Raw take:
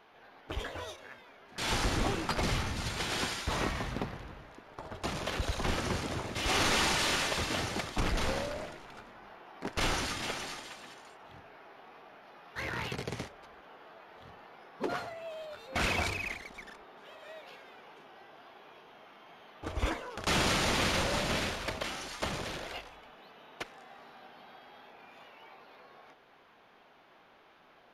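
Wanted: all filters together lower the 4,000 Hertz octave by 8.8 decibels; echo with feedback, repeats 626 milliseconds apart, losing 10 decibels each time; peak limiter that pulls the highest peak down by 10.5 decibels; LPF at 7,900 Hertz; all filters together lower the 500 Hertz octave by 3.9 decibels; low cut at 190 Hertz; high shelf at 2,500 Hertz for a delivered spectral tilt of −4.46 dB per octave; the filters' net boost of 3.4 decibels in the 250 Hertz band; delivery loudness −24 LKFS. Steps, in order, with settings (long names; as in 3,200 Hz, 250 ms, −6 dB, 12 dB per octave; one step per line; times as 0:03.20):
high-pass filter 190 Hz
low-pass filter 7,900 Hz
parametric band 250 Hz +8.5 dB
parametric band 500 Hz −7.5 dB
high-shelf EQ 2,500 Hz −5.5 dB
parametric band 4,000 Hz −6.5 dB
brickwall limiter −30 dBFS
repeating echo 626 ms, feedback 32%, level −10 dB
level +17 dB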